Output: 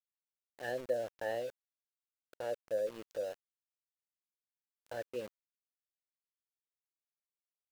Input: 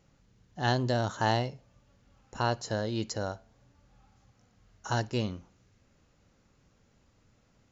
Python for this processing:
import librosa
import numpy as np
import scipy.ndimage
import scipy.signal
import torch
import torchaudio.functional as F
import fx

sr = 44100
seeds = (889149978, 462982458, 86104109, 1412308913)

y = fx.envelope_sharpen(x, sr, power=1.5)
y = fx.vowel_filter(y, sr, vowel='e')
y = np.where(np.abs(y) >= 10.0 ** (-48.5 / 20.0), y, 0.0)
y = y * 10.0 ** (2.5 / 20.0)